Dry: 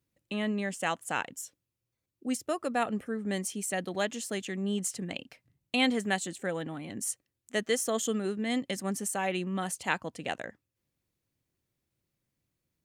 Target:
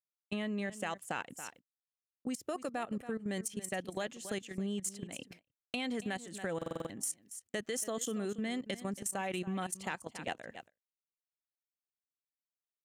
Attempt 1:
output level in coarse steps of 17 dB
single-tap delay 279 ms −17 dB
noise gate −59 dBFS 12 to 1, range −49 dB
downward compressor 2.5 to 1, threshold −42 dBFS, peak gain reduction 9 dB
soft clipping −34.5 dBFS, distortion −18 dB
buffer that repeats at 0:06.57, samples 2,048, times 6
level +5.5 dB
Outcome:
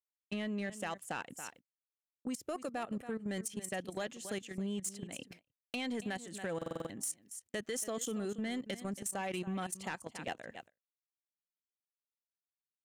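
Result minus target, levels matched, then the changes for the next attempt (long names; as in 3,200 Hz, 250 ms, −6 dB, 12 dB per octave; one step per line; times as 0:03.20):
soft clipping: distortion +13 dB
change: soft clipping −26 dBFS, distortion −31 dB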